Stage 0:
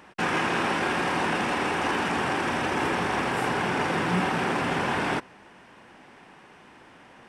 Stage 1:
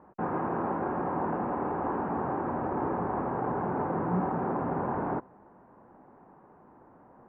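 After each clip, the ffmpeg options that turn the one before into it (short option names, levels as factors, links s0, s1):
-af "lowpass=f=1100:w=0.5412,lowpass=f=1100:w=1.3066,volume=0.75"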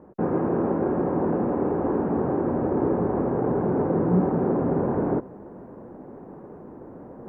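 -af "lowshelf=f=650:t=q:w=1.5:g=8,areverse,acompressor=mode=upward:threshold=0.0224:ratio=2.5,areverse"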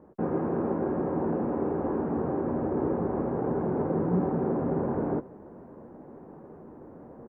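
-filter_complex "[0:a]asplit=2[s0][s1];[s1]adelay=13,volume=0.266[s2];[s0][s2]amix=inputs=2:normalize=0,volume=0.562"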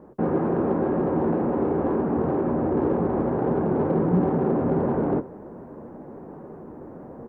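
-filter_complex "[0:a]asplit=2[s0][s1];[s1]asoftclip=type=tanh:threshold=0.0299,volume=0.376[s2];[s0][s2]amix=inputs=2:normalize=0,flanger=delay=4.9:depth=8.6:regen=-71:speed=2:shape=sinusoidal,volume=2.51"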